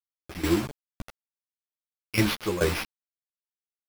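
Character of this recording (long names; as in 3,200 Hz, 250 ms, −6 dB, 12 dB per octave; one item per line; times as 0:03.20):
a quantiser's noise floor 6 bits, dither none
tremolo saw down 2.3 Hz, depth 80%
aliases and images of a low sample rate 7,700 Hz, jitter 0%
a shimmering, thickened sound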